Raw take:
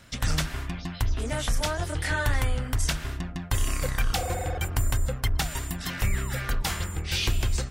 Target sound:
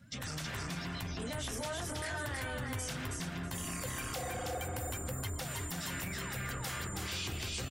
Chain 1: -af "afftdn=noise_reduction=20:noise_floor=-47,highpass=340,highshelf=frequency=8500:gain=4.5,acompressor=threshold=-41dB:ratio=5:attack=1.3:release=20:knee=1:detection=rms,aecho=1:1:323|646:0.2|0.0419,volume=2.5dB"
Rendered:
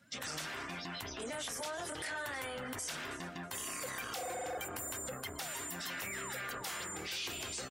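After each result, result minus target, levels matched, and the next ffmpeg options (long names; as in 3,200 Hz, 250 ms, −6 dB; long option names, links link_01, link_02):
125 Hz band −11.5 dB; echo-to-direct −11.5 dB
-af "afftdn=noise_reduction=20:noise_floor=-47,highpass=120,highshelf=frequency=8500:gain=4.5,acompressor=threshold=-41dB:ratio=5:attack=1.3:release=20:knee=1:detection=rms,aecho=1:1:323|646:0.2|0.0419,volume=2.5dB"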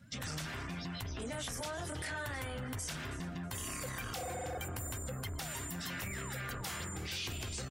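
echo-to-direct −11.5 dB
-af "afftdn=noise_reduction=20:noise_floor=-47,highpass=120,highshelf=frequency=8500:gain=4.5,acompressor=threshold=-41dB:ratio=5:attack=1.3:release=20:knee=1:detection=rms,aecho=1:1:323|646|969:0.75|0.157|0.0331,volume=2.5dB"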